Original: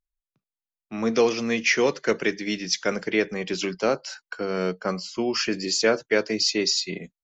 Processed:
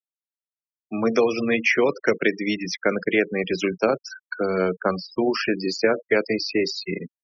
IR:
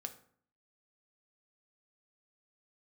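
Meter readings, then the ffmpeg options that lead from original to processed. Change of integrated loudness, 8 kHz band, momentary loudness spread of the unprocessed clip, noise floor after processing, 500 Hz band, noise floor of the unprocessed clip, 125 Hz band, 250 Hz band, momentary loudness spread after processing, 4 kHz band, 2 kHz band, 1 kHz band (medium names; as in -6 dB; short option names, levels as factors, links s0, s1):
+1.5 dB, no reading, 8 LU, under -85 dBFS, +2.5 dB, under -85 dBFS, +2.5 dB, +2.5 dB, 6 LU, -5.0 dB, +2.5 dB, +2.5 dB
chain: -filter_complex "[0:a]tremolo=f=100:d=0.462,acrossover=split=260|2800[s0][s1][s2];[s0]acompressor=threshold=0.0126:ratio=4[s3];[s1]acompressor=threshold=0.0631:ratio=4[s4];[s2]acompressor=threshold=0.00891:ratio=4[s5];[s3][s4][s5]amix=inputs=3:normalize=0,afftfilt=real='re*gte(hypot(re,im),0.0224)':imag='im*gte(hypot(re,im),0.0224)':win_size=1024:overlap=0.75,volume=2.37"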